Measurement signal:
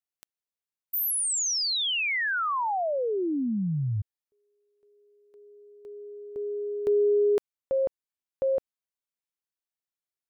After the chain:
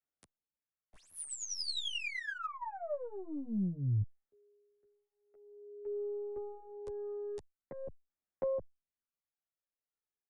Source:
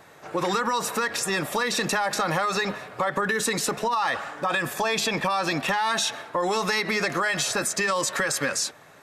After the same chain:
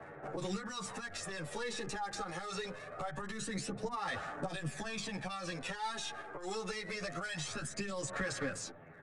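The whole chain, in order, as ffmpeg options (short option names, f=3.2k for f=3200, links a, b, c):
-filter_complex "[0:a]bandreject=f=1k:w=6.1,acrossover=split=150|3600[a][b][c];[a]acompressor=threshold=-40dB:ratio=3[d];[b]acompressor=threshold=-39dB:ratio=4[e];[c]acompressor=threshold=-44dB:ratio=3[f];[d][e][f]amix=inputs=3:normalize=0,aeval=exprs='(tanh(28.2*val(0)+0.4)-tanh(0.4))/28.2':c=same,aphaser=in_gain=1:out_gain=1:delay=2.5:decay=0.49:speed=0.24:type=sinusoidal,acrossover=split=110|1400|2000[g][h][i][j];[j]aeval=exprs='sgn(val(0))*max(abs(val(0))-0.00211,0)':c=same[k];[g][h][i][k]amix=inputs=4:normalize=0,aresample=22050,aresample=44100,asplit=2[l][m];[m]adelay=10,afreqshift=-0.66[n];[l][n]amix=inputs=2:normalize=1,volume=1dB"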